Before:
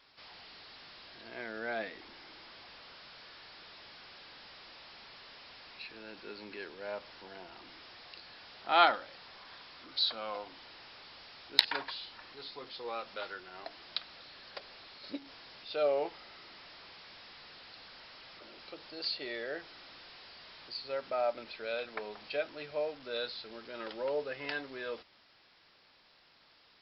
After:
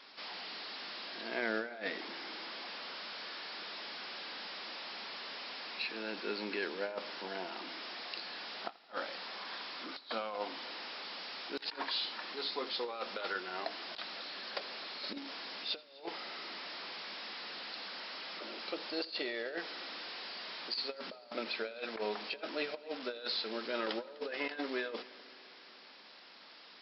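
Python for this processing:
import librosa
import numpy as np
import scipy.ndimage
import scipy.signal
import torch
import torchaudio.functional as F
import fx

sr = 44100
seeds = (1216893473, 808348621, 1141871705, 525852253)

y = fx.brickwall_bandpass(x, sr, low_hz=170.0, high_hz=6200.0)
y = fx.over_compress(y, sr, threshold_db=-42.0, ratio=-0.5)
y = fx.echo_heads(y, sr, ms=84, heads='first and third', feedback_pct=69, wet_db=-23.0)
y = F.gain(torch.from_numpy(y), 3.0).numpy()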